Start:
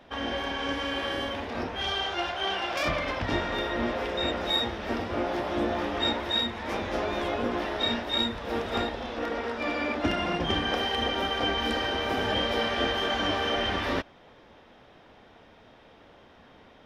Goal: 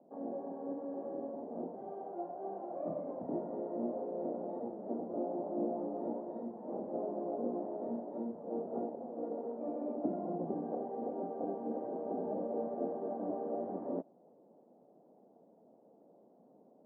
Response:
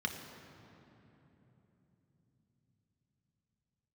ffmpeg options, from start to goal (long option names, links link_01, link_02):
-af "asuperpass=centerf=350:order=8:qfactor=0.61,volume=-6.5dB"